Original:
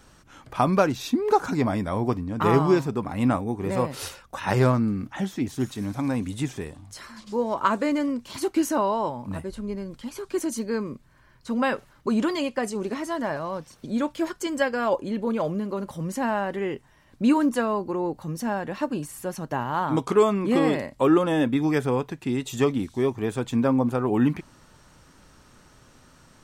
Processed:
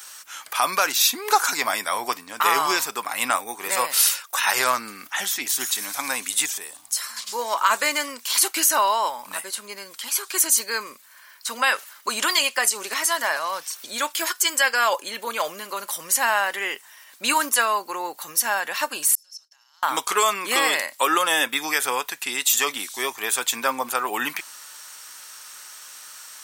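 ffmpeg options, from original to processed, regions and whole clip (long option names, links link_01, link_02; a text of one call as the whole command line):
ffmpeg -i in.wav -filter_complex "[0:a]asettb=1/sr,asplit=3[link_01][link_02][link_03];[link_01]atrim=end=6.464[link_04];[link_02]atrim=start=6.46:end=7.17,asetpts=PTS-STARTPTS,afade=type=in:duration=0.004:curve=qsin,afade=type=out:start_time=0.706:duration=0.004:curve=qsin,equalizer=frequency=2200:width=0.6:gain=-6,acompressor=threshold=-39dB:ratio=1.5:attack=3.2:release=140:knee=1:detection=peak[link_05];[link_03]atrim=start=7.166[link_06];[link_04][link_05]acrossfade=duration=0.004:curve1=hsin:curve2=qsin[link_07];[link_07][link_06]acrossfade=duration=0.004:curve1=qsin:curve2=hsin,asettb=1/sr,asplit=3[link_08][link_09][link_10];[link_08]atrim=end=19.154[link_11];[link_09]atrim=start=19.15:end=19.83,asetpts=PTS-STARTPTS,afade=type=in:duration=0.004:curve=qsin,afade=type=out:start_time=0.676:duration=0.004:curve=qsin,agate=range=-33dB:threshold=-35dB:ratio=3:release=100:detection=peak,acompressor=threshold=-31dB:ratio=2:attack=3.2:release=140:knee=1:detection=peak,bandpass=frequency=5300:width_type=q:width=16[link_12];[link_10]atrim=start=19.826[link_13];[link_11][link_12]acrossfade=duration=0.004:curve1=hsin:curve2=qsin[link_14];[link_14][link_13]acrossfade=duration=0.004:curve1=qsin:curve2=hsin,highpass=1300,aemphasis=mode=production:type=50fm,alimiter=level_in=18.5dB:limit=-1dB:release=50:level=0:latency=1,volume=-6dB" out.wav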